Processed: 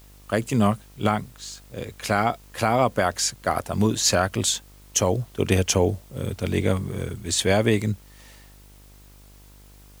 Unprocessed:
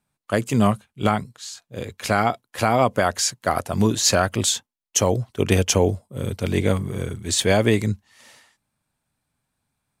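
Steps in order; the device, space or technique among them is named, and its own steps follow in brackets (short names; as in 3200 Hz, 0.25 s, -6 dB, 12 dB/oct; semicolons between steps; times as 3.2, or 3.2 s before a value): video cassette with head-switching buzz (buzz 50 Hz, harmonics 28, -48 dBFS -7 dB/oct; white noise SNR 31 dB); gain -2 dB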